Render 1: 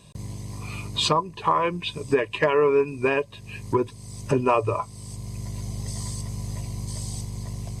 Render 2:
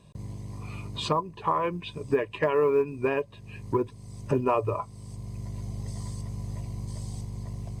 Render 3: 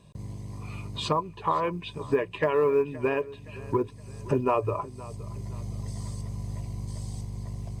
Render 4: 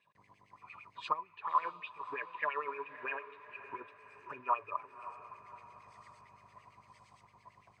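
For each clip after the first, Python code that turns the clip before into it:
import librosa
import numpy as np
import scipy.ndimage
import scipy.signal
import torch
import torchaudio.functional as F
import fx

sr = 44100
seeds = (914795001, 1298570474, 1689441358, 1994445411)

y1 = fx.high_shelf(x, sr, hz=2300.0, db=-10.0)
y1 = fx.quant_float(y1, sr, bits=6)
y1 = F.gain(torch.from_numpy(y1), -3.0).numpy()
y2 = fx.echo_feedback(y1, sr, ms=519, feedback_pct=43, wet_db=-19.0)
y3 = fx.filter_lfo_bandpass(y2, sr, shape='sine', hz=8.8, low_hz=970.0, high_hz=2500.0, q=5.9)
y3 = fx.echo_diffused(y3, sr, ms=581, feedback_pct=52, wet_db=-14.5)
y3 = F.gain(torch.from_numpy(y3), 2.5).numpy()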